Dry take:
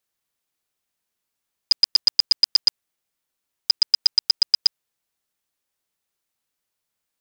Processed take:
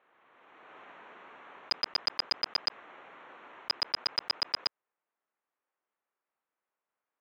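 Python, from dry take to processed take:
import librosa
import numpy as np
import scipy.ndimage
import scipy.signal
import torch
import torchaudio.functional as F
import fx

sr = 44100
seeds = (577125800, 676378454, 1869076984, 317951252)

p1 = fx.wiener(x, sr, points=9)
p2 = fx.bandpass_edges(p1, sr, low_hz=340.0, high_hz=2300.0)
p3 = fx.peak_eq(p2, sr, hz=1100.0, db=3.5, octaves=0.77)
p4 = fx.quant_companded(p3, sr, bits=2)
p5 = p3 + (p4 * librosa.db_to_amplitude(-4.0))
p6 = fx.air_absorb(p5, sr, metres=76.0)
y = fx.pre_swell(p6, sr, db_per_s=25.0)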